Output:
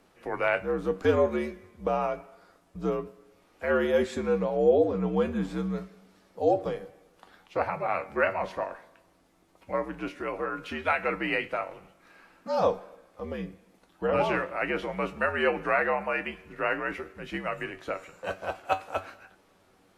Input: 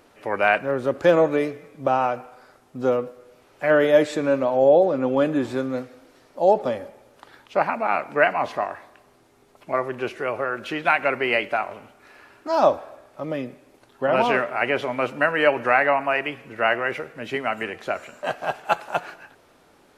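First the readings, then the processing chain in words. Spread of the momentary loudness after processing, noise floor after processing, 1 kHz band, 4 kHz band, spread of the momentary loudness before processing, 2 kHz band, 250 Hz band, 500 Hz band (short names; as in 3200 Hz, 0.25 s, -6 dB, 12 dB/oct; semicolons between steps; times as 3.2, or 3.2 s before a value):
13 LU, -63 dBFS, -8.0 dB, -8.0 dB, 13 LU, -7.5 dB, -5.0 dB, -6.5 dB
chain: frequency shift -74 Hz; resonator 95 Hz, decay 0.19 s, harmonics all, mix 70%; gain -1.5 dB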